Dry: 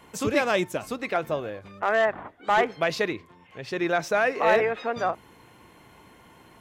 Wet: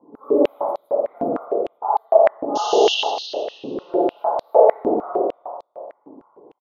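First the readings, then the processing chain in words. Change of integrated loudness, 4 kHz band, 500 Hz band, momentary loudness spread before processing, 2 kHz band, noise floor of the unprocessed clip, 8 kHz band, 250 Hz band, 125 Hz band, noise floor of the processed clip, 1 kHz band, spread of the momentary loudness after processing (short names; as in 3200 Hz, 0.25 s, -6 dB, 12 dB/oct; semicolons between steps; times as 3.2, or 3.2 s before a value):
+5.5 dB, +9.5 dB, +8.0 dB, 13 LU, -10.0 dB, -54 dBFS, +3.0 dB, +5.5 dB, n/a, -63 dBFS, +5.5 dB, 17 LU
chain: phase scrambler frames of 50 ms; inverse Chebyshev band-stop 1600–8600 Hz, stop band 40 dB; low-pass opened by the level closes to 1900 Hz, open at -22 dBFS; painted sound noise, 2.55–2.95, 2700–6800 Hz -30 dBFS; on a send: frequency-shifting echo 0.16 s, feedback 49%, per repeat -53 Hz, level -7 dB; on the sum: spring tank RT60 1.7 s, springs 49/56 ms, chirp 45 ms, DRR -7.5 dB; stepped high-pass 6.6 Hz 270–4200 Hz; gain -4.5 dB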